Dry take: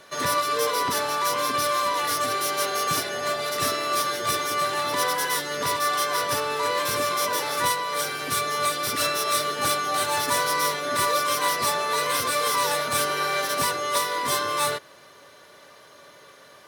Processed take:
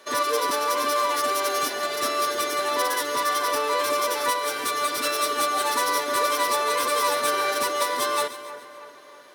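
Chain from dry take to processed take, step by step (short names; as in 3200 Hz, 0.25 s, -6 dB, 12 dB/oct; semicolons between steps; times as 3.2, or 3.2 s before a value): resonant low shelf 200 Hz -11.5 dB, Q 1.5; time stretch by phase-locked vocoder 0.56×; split-band echo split 2400 Hz, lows 0.319 s, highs 0.141 s, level -13 dB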